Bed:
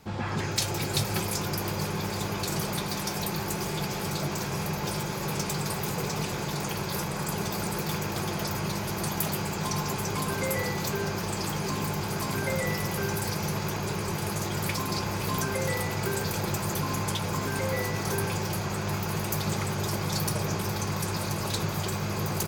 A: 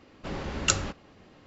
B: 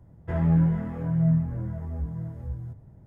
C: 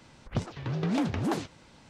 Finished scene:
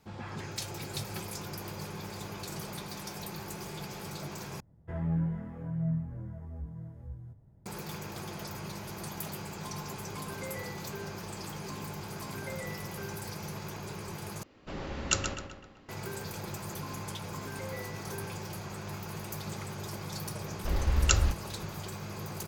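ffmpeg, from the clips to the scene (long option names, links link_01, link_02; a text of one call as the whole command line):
ffmpeg -i bed.wav -i cue0.wav -i cue1.wav -filter_complex "[1:a]asplit=2[link_01][link_02];[0:a]volume=-10dB[link_03];[link_01]asplit=2[link_04][link_05];[link_05]adelay=128,lowpass=frequency=4900:poles=1,volume=-6dB,asplit=2[link_06][link_07];[link_07]adelay=128,lowpass=frequency=4900:poles=1,volume=0.5,asplit=2[link_08][link_09];[link_09]adelay=128,lowpass=frequency=4900:poles=1,volume=0.5,asplit=2[link_10][link_11];[link_11]adelay=128,lowpass=frequency=4900:poles=1,volume=0.5,asplit=2[link_12][link_13];[link_13]adelay=128,lowpass=frequency=4900:poles=1,volume=0.5,asplit=2[link_14][link_15];[link_15]adelay=128,lowpass=frequency=4900:poles=1,volume=0.5[link_16];[link_04][link_06][link_08][link_10][link_12][link_14][link_16]amix=inputs=7:normalize=0[link_17];[link_02]lowshelf=frequency=100:width_type=q:width=1.5:gain=13.5[link_18];[link_03]asplit=3[link_19][link_20][link_21];[link_19]atrim=end=4.604[link_22];[2:a]atrim=end=3.06,asetpts=PTS-STARTPTS,volume=-9.5dB[link_23];[link_20]atrim=start=7.656:end=14.434[link_24];[link_17]atrim=end=1.46,asetpts=PTS-STARTPTS,volume=-4.5dB[link_25];[link_21]atrim=start=15.886[link_26];[link_18]atrim=end=1.46,asetpts=PTS-STARTPTS,volume=-2.5dB,afade=type=in:duration=0.004:curve=hsin,afade=type=out:start_time=1.456:duration=0.004:curve=hsin,adelay=20410[link_27];[link_22][link_23]acrossfade=duration=0.004:curve1=hsin:curve2=hsin[link_28];[link_28][link_24]acrossfade=duration=0.004:curve1=hsin:curve2=hsin[link_29];[link_29][link_25]acrossfade=duration=0.004:curve1=hsin:curve2=hsin[link_30];[link_30][link_26]acrossfade=duration=0.004:curve1=hsin:curve2=hsin[link_31];[link_31][link_27]amix=inputs=2:normalize=0" out.wav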